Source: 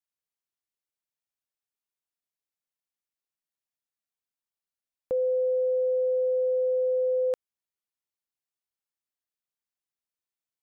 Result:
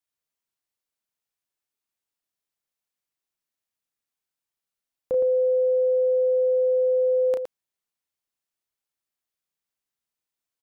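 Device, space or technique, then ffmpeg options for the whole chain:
slapback doubling: -filter_complex "[0:a]asplit=3[a][b][c];[b]adelay=33,volume=-6.5dB[d];[c]adelay=115,volume=-7dB[e];[a][d][e]amix=inputs=3:normalize=0,volume=2.5dB"

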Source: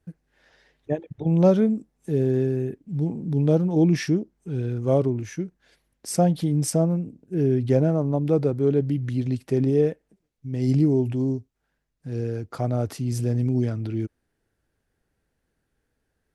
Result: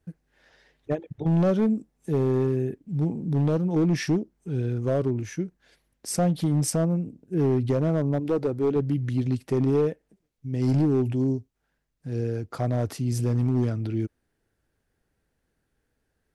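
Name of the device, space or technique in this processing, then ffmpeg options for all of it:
limiter into clipper: -filter_complex "[0:a]alimiter=limit=-12.5dB:level=0:latency=1:release=231,asoftclip=type=hard:threshold=-17dB,asettb=1/sr,asplit=3[a][b][c];[a]atrim=end=8.194[d];[b]atrim=start=8.19:end=8.76,asetpts=PTS-STARTPTS,afade=t=in:d=0.004:c=qsin,afade=t=out:st=0.566:d=0.004:c=qsin,equalizer=f=150:t=o:w=0.29:g=-11.5[e];[c]atrim=start=8.756[f];[d][e]acrossfade=d=0.004:c1=hsin:c2=qsin[g];[g][f]acrossfade=d=0.004:c1=qsin:c2=hsin"

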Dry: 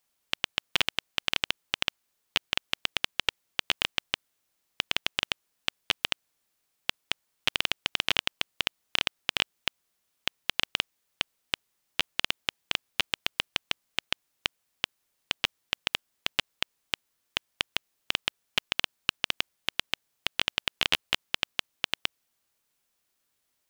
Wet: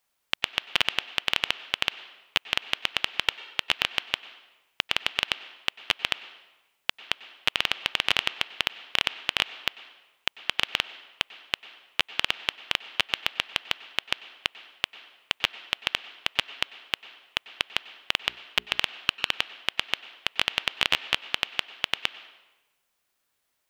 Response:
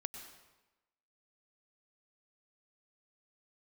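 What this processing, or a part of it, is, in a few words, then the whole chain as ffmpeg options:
filtered reverb send: -filter_complex "[0:a]asettb=1/sr,asplit=3[a][b][c];[a]atrim=end=18.244[d];[b]atrim=start=18.24:end=18.8,asetpts=PTS-STARTPTS,afade=t=in:d=0.004:c=qsin,afade=t=out:st=0.556:d=0.004:c=qsin,bandreject=f=60:t=h:w=6,bandreject=f=120:t=h:w=6,bandreject=f=180:t=h:w=6,bandreject=f=240:t=h:w=6,bandreject=f=300:t=h:w=6,bandreject=f=360:t=h:w=6,bandreject=f=420:t=h:w=6[e];[c]atrim=start=18.796[f];[d][e]acrossfade=d=0.004:c1=hsin:c2=qsin[g];[g][f]acrossfade=d=0.004:c1=qsin:c2=hsin,asplit=2[h][i];[i]highpass=420,lowpass=3.9k[j];[1:a]atrim=start_sample=2205[k];[j][k]afir=irnorm=-1:irlink=0,volume=-2.5dB[l];[h][l]amix=inputs=2:normalize=0"

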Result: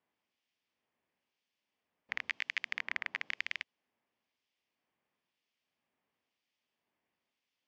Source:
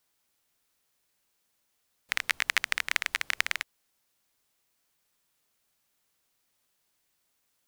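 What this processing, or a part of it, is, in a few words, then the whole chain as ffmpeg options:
guitar amplifier with harmonic tremolo: -filter_complex "[0:a]asettb=1/sr,asplit=3[a][b][c];[a]atrim=end=2.294[d];[b]atrim=start=2.29:end=3.41,asetpts=PTS-STARTPTS,afade=t=in:d=0.004:c=qsin,afade=t=out:st=1.116:d=0.004:c=qsin,highpass=f=120:w=0.5412,highpass=f=120:w=1.3066[e];[c]atrim=start=3.406[f];[d][e]acrossfade=d=0.004:c1=hsin:c2=qsin[g];[g][f]acrossfade=d=0.004:c1=qsin:c2=hsin,acrossover=split=2200[h][i];[h]aeval=exprs='val(0)*(1-0.7/2+0.7/2*cos(2*PI*1*n/s))':c=same[j];[i]aeval=exprs='val(0)*(1-0.7/2-0.7/2*cos(2*PI*1*n/s))':c=same[k];[j][k]amix=inputs=2:normalize=0,asoftclip=type=tanh:threshold=-16.5dB,highpass=100,equalizer=f=130:t=q:w=4:g=-5,equalizer=f=240:t=q:w=4:g=4,equalizer=f=1.4k:t=q:w=4:g=-7,equalizer=f=4k:t=q:w=4:g=-9,lowpass=f=4.3k:w=0.5412,lowpass=f=4.3k:w=1.3066"

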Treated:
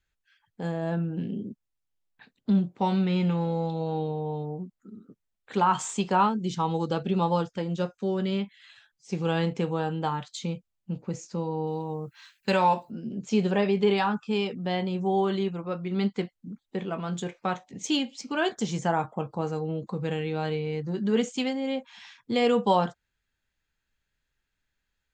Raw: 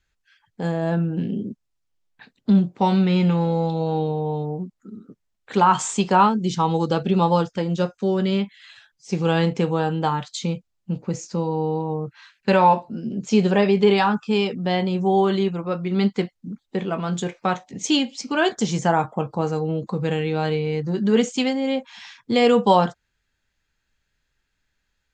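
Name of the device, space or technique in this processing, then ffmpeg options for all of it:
exciter from parts: -filter_complex "[0:a]asplit=2[a][b];[b]highpass=f=3.6k:w=0.5412,highpass=f=3.6k:w=1.3066,asoftclip=type=tanh:threshold=-25.5dB,highpass=3.6k,volume=-12.5dB[c];[a][c]amix=inputs=2:normalize=0,asettb=1/sr,asplit=3[d][e][f];[d]atrim=end=11.674[g];[e]atrim=start=11.67:end=12.91,asetpts=PTS-STARTPTS,afade=t=in:d=0.004:c=qsin,afade=t=out:st=1.236:d=0.004:c=qsin,aemphasis=mode=production:type=75fm[h];[f]atrim=start=12.906[i];[g][h]acrossfade=d=0.004:c1=hsin:c2=qsin[j];[j][i]acrossfade=d=0.004:c1=qsin:c2=hsin,volume=-6.5dB"

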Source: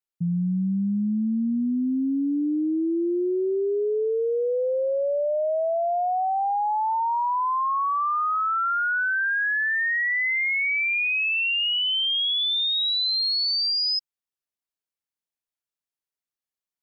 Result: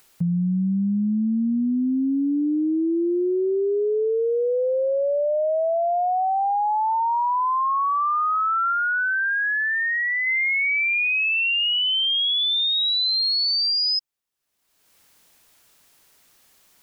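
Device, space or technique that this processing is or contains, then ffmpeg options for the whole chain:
upward and downward compression: -filter_complex "[0:a]acompressor=mode=upward:threshold=-43dB:ratio=2.5,acompressor=threshold=-28dB:ratio=4,asettb=1/sr,asplit=3[a][b][c];[a]atrim=end=8.724[d];[b]atrim=start=8.72:end=10.27,asetpts=PTS-STARTPTS,afade=t=in:d=0.004:c=qsin,afade=t=out:st=1.546:d=0.004:c=qsin,aemphasis=mode=reproduction:type=75fm[e];[c]atrim=start=10.266[f];[d][e]acrossfade=d=0.004:c1=hsin:c2=qsin[g];[g][f]acrossfade=d=0.004:c1=qsin:c2=hsin,volume=7dB"

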